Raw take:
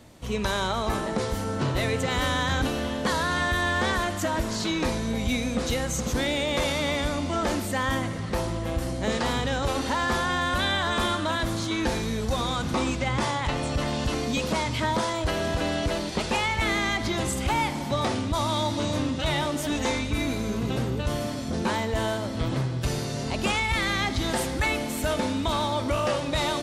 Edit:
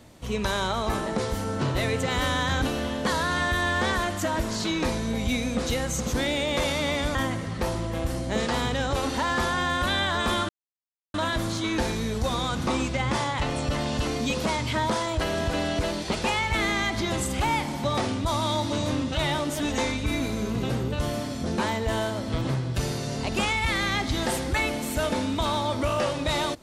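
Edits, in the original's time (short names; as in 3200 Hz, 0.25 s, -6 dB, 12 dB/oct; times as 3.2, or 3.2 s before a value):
7.15–7.87 cut
11.21 insert silence 0.65 s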